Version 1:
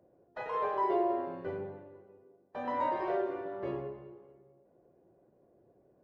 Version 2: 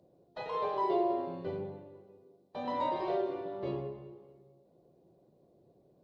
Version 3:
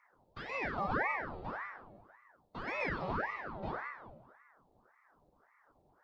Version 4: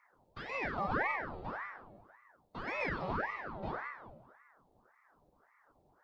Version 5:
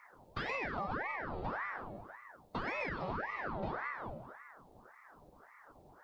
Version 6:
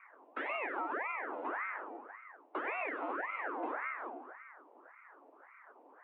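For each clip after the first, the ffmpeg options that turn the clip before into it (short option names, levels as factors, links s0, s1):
-af "equalizer=f=160:t=o:w=0.67:g=6,equalizer=f=1600:t=o:w=0.67:g=-9,equalizer=f=4000:t=o:w=0.67:g=12"
-af "aeval=exprs='val(0)*sin(2*PI*890*n/s+890*0.8/1.8*sin(2*PI*1.8*n/s))':c=same,volume=0.891"
-af "aeval=exprs='0.0841*(cos(1*acos(clip(val(0)/0.0841,-1,1)))-cos(1*PI/2))+0.00596*(cos(2*acos(clip(val(0)/0.0841,-1,1)))-cos(2*PI/2))':c=same"
-af "acompressor=threshold=0.00631:ratio=12,volume=2.99"
-af "highpass=f=150:t=q:w=0.5412,highpass=f=150:t=q:w=1.307,lowpass=f=2600:t=q:w=0.5176,lowpass=f=2600:t=q:w=0.7071,lowpass=f=2600:t=q:w=1.932,afreqshift=130,volume=1.12"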